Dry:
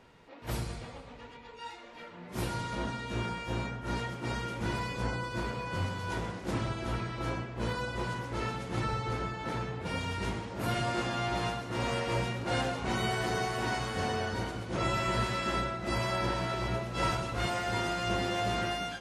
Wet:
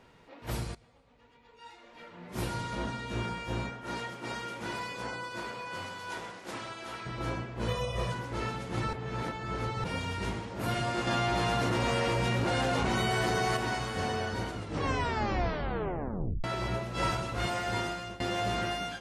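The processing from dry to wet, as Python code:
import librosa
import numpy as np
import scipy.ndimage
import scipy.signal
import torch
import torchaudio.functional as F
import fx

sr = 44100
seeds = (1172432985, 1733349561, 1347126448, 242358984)

y = fx.highpass(x, sr, hz=fx.line((3.69, 270.0), (7.05, 1000.0)), slope=6, at=(3.69, 7.05), fade=0.02)
y = fx.comb(y, sr, ms=1.7, depth=0.91, at=(7.68, 8.12))
y = fx.env_flatten(y, sr, amount_pct=100, at=(11.07, 13.57))
y = fx.edit(y, sr, fx.fade_in_from(start_s=0.75, length_s=1.5, curve='qua', floor_db=-18.5),
    fx.reverse_span(start_s=8.93, length_s=0.91),
    fx.tape_stop(start_s=14.51, length_s=1.93),
    fx.fade_out_to(start_s=17.79, length_s=0.41, floor_db=-21.0), tone=tone)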